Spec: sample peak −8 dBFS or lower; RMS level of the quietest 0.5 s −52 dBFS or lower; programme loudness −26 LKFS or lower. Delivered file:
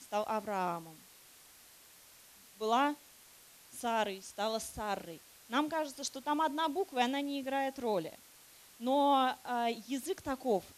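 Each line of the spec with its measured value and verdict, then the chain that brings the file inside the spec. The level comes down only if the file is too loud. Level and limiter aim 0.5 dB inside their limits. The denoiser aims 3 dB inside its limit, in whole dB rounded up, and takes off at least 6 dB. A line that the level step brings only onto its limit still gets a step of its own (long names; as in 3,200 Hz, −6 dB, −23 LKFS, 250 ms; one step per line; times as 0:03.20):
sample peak −17.0 dBFS: in spec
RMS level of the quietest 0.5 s −59 dBFS: in spec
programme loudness −34.5 LKFS: in spec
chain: no processing needed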